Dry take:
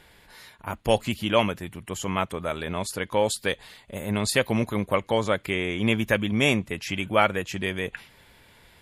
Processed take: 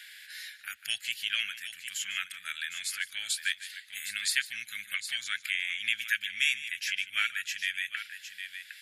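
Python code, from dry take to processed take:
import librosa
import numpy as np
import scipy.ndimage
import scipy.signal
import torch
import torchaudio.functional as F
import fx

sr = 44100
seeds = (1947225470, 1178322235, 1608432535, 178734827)

p1 = scipy.signal.sosfilt(scipy.signal.ellip(4, 1.0, 40, 1600.0, 'highpass', fs=sr, output='sos'), x)
p2 = p1 + fx.echo_multitap(p1, sr, ms=(149, 759), db=(-16.5, -13.0), dry=0)
y = fx.band_squash(p2, sr, depth_pct=40)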